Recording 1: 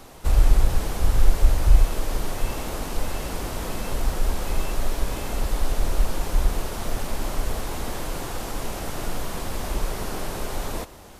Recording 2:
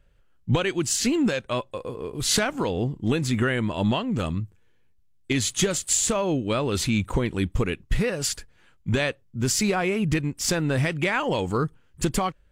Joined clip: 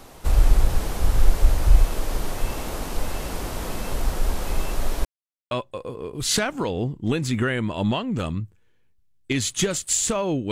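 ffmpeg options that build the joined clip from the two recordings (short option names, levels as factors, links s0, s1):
-filter_complex "[0:a]apad=whole_dur=10.51,atrim=end=10.51,asplit=2[s0][s1];[s0]atrim=end=5.05,asetpts=PTS-STARTPTS,afade=t=out:st=5.046:d=0.004:c=hsin[s2];[s1]atrim=start=5.05:end=5.51,asetpts=PTS-STARTPTS,volume=0[s3];[1:a]atrim=start=1.51:end=6.51,asetpts=PTS-STARTPTS,afade=t=in:d=0.004:c=hsin[s4];[s2][s3][s4]concat=n=3:v=0:a=1"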